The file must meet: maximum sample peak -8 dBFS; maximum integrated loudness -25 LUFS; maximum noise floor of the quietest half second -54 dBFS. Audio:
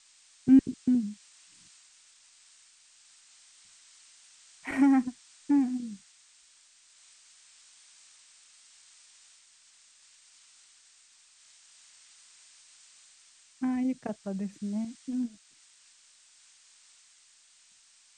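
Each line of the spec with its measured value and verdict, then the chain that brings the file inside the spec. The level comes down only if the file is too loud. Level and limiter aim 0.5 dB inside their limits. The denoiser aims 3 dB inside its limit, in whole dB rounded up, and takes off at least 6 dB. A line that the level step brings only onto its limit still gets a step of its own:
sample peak -11.0 dBFS: pass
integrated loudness -28.5 LUFS: pass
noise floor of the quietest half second -61 dBFS: pass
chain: none needed

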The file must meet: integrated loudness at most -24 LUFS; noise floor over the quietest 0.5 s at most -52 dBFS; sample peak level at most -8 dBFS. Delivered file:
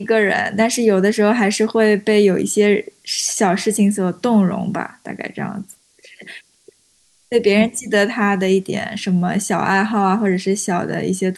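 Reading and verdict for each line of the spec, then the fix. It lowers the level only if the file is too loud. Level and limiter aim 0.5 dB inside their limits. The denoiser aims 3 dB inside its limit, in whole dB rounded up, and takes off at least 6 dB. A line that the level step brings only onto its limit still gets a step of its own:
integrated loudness -17.0 LUFS: fail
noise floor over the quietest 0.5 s -58 dBFS: pass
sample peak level -4.0 dBFS: fail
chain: trim -7.5 dB

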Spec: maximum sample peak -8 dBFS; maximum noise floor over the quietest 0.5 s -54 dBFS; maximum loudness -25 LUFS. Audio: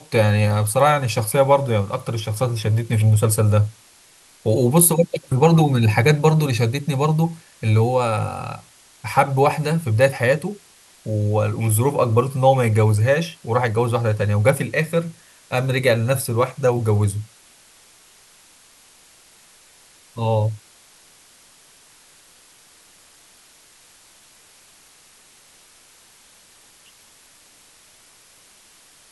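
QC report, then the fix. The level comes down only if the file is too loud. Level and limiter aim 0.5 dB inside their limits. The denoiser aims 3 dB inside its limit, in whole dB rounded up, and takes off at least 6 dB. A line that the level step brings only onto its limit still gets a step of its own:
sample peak -2.5 dBFS: fail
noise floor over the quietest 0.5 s -51 dBFS: fail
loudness -19.0 LUFS: fail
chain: trim -6.5 dB

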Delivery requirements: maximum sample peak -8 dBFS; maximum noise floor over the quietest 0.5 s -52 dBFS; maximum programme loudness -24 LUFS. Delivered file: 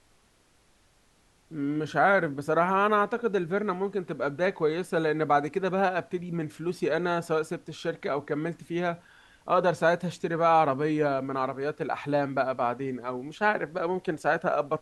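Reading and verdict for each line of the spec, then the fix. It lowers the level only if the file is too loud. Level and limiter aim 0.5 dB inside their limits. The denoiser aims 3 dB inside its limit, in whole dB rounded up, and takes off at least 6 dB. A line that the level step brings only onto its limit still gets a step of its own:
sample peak -9.5 dBFS: pass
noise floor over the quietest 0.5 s -64 dBFS: pass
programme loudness -27.5 LUFS: pass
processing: none needed

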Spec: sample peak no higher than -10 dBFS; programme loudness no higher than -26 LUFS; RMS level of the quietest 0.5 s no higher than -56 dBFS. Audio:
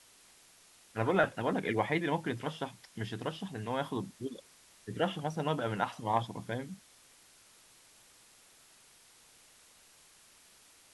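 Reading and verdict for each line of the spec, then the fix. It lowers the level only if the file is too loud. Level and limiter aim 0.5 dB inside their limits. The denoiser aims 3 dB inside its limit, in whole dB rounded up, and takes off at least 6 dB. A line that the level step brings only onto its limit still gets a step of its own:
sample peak -14.5 dBFS: pass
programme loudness -34.5 LUFS: pass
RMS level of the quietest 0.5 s -61 dBFS: pass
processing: none needed

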